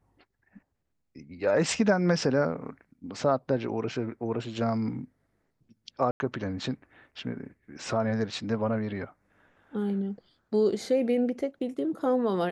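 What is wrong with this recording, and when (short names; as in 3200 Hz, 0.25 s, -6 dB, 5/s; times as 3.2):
6.11–6.2 gap 91 ms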